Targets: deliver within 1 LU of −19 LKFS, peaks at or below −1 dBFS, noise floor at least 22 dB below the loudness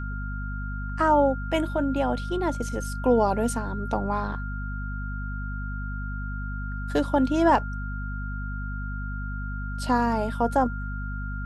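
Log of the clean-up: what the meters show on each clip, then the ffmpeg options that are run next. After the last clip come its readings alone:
mains hum 50 Hz; hum harmonics up to 250 Hz; level of the hum −29 dBFS; interfering tone 1,400 Hz; level of the tone −37 dBFS; integrated loudness −27.0 LKFS; sample peak −8.0 dBFS; target loudness −19.0 LKFS
→ -af "bandreject=frequency=50:width_type=h:width=6,bandreject=frequency=100:width_type=h:width=6,bandreject=frequency=150:width_type=h:width=6,bandreject=frequency=200:width_type=h:width=6,bandreject=frequency=250:width_type=h:width=6"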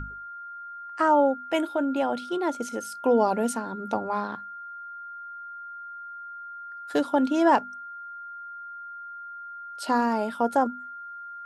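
mains hum none found; interfering tone 1,400 Hz; level of the tone −37 dBFS
→ -af "bandreject=frequency=1400:width=30"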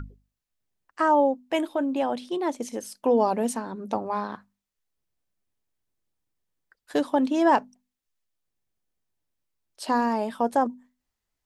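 interfering tone none found; integrated loudness −25.5 LKFS; sample peak −9.0 dBFS; target loudness −19.0 LKFS
→ -af "volume=6.5dB"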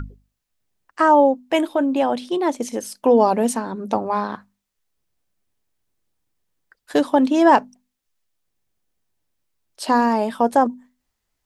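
integrated loudness −19.0 LKFS; sample peak −2.5 dBFS; background noise floor −78 dBFS

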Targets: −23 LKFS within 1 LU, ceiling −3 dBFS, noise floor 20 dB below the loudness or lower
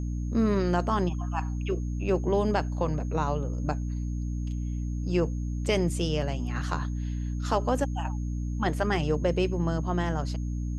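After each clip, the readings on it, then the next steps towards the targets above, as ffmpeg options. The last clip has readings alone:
mains hum 60 Hz; hum harmonics up to 300 Hz; level of the hum −28 dBFS; interfering tone 6,500 Hz; level of the tone −57 dBFS; integrated loudness −29.0 LKFS; sample peak −11.5 dBFS; target loudness −23.0 LKFS
→ -af "bandreject=frequency=60:width_type=h:width=6,bandreject=frequency=120:width_type=h:width=6,bandreject=frequency=180:width_type=h:width=6,bandreject=frequency=240:width_type=h:width=6,bandreject=frequency=300:width_type=h:width=6"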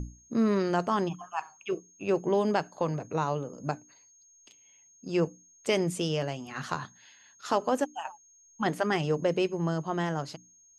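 mains hum none found; interfering tone 6,500 Hz; level of the tone −57 dBFS
→ -af "bandreject=frequency=6500:width=30"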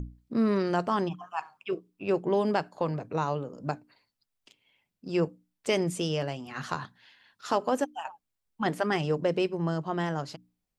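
interfering tone none found; integrated loudness −30.5 LKFS; sample peak −12.5 dBFS; target loudness −23.0 LKFS
→ -af "volume=7.5dB"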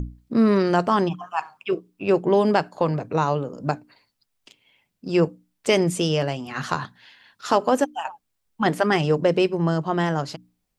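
integrated loudness −23.0 LKFS; sample peak −5.0 dBFS; background noise floor −76 dBFS

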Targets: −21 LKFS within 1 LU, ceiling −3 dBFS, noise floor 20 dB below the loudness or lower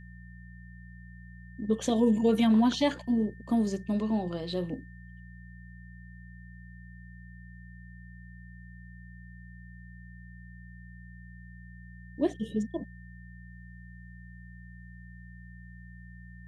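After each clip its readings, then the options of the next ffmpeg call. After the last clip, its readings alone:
mains hum 60 Hz; hum harmonics up to 180 Hz; level of the hum −46 dBFS; interfering tone 1,800 Hz; level of the tone −55 dBFS; integrated loudness −28.5 LKFS; sample peak −13.5 dBFS; target loudness −21.0 LKFS
→ -af "bandreject=frequency=60:width_type=h:width=4,bandreject=frequency=120:width_type=h:width=4,bandreject=frequency=180:width_type=h:width=4"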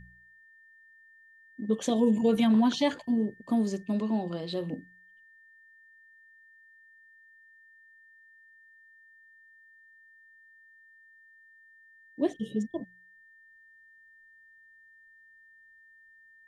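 mains hum none found; interfering tone 1,800 Hz; level of the tone −55 dBFS
→ -af "bandreject=frequency=1800:width=30"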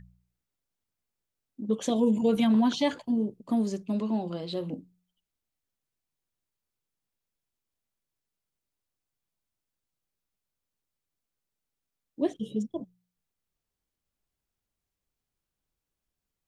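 interfering tone none found; integrated loudness −28.5 LKFS; sample peak −13.5 dBFS; target loudness −21.0 LKFS
→ -af "volume=7.5dB"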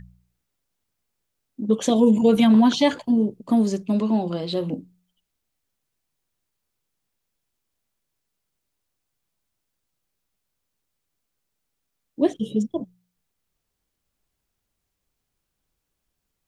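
integrated loudness −21.0 LKFS; sample peak −6.0 dBFS; background noise floor −80 dBFS

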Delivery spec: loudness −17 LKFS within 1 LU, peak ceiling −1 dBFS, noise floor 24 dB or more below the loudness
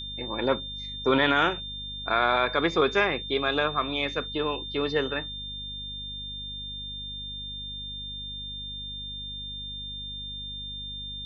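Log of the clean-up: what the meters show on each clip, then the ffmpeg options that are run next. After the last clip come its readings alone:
mains hum 50 Hz; hum harmonics up to 250 Hz; level of the hum −41 dBFS; interfering tone 3,600 Hz; level of the tone −35 dBFS; integrated loudness −28.5 LKFS; sample peak −9.5 dBFS; target loudness −17.0 LKFS
→ -af "bandreject=frequency=50:width_type=h:width=4,bandreject=frequency=100:width_type=h:width=4,bandreject=frequency=150:width_type=h:width=4,bandreject=frequency=200:width_type=h:width=4,bandreject=frequency=250:width_type=h:width=4"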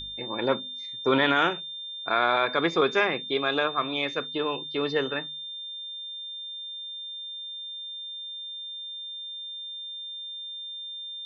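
mains hum none found; interfering tone 3,600 Hz; level of the tone −35 dBFS
→ -af "bandreject=frequency=3600:width=30"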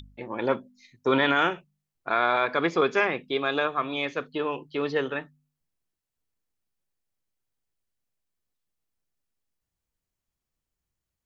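interfering tone none found; integrated loudness −26.5 LKFS; sample peak −9.5 dBFS; target loudness −17.0 LKFS
→ -af "volume=9.5dB,alimiter=limit=-1dB:level=0:latency=1"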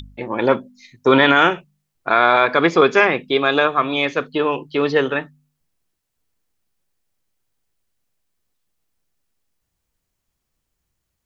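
integrated loudness −17.0 LKFS; sample peak −1.0 dBFS; background noise floor −77 dBFS

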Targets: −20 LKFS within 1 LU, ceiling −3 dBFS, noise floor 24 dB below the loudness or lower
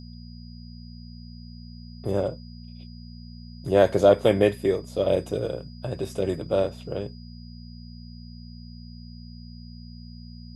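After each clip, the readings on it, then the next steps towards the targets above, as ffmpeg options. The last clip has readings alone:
mains hum 60 Hz; hum harmonics up to 240 Hz; level of the hum −40 dBFS; interfering tone 4,900 Hz; level of the tone −52 dBFS; integrated loudness −24.5 LKFS; sample peak −5.5 dBFS; target loudness −20.0 LKFS
→ -af "bandreject=frequency=60:width_type=h:width=4,bandreject=frequency=120:width_type=h:width=4,bandreject=frequency=180:width_type=h:width=4,bandreject=frequency=240:width_type=h:width=4"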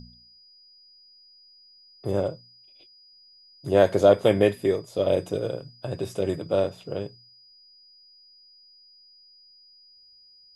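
mains hum none found; interfering tone 4,900 Hz; level of the tone −52 dBFS
→ -af "bandreject=frequency=4900:width=30"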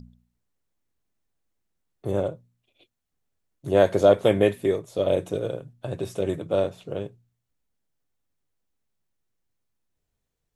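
interfering tone none found; integrated loudness −24.0 LKFS; sample peak −5.0 dBFS; target loudness −20.0 LKFS
→ -af "volume=4dB,alimiter=limit=-3dB:level=0:latency=1"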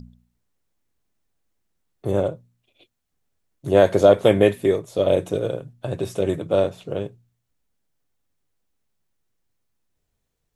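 integrated loudness −20.5 LKFS; sample peak −3.0 dBFS; background noise floor −77 dBFS

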